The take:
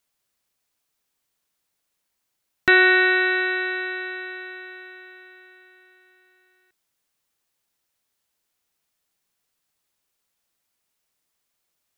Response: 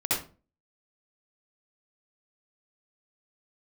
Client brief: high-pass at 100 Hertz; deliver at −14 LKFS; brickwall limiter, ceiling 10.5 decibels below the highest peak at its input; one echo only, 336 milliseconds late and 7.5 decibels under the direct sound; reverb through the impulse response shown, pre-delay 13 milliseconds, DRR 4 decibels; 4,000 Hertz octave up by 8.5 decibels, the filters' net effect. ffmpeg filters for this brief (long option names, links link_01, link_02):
-filter_complex "[0:a]highpass=100,equalizer=frequency=4000:width_type=o:gain=9,alimiter=limit=-11.5dB:level=0:latency=1,aecho=1:1:336:0.422,asplit=2[link_01][link_02];[1:a]atrim=start_sample=2205,adelay=13[link_03];[link_02][link_03]afir=irnorm=-1:irlink=0,volume=-14dB[link_04];[link_01][link_04]amix=inputs=2:normalize=0,volume=5.5dB"